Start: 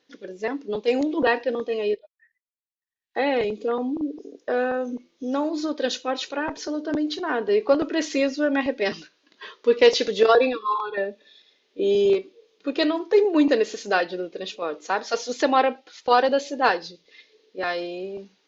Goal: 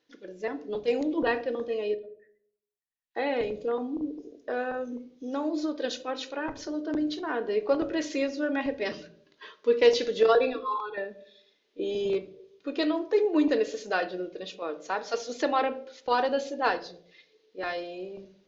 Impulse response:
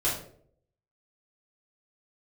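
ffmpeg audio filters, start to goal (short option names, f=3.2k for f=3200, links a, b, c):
-filter_complex "[0:a]asplit=2[a][b];[b]lowpass=3.8k[c];[1:a]atrim=start_sample=2205,lowshelf=f=260:g=10[d];[c][d]afir=irnorm=-1:irlink=0,volume=-20dB[e];[a][e]amix=inputs=2:normalize=0,volume=-7dB"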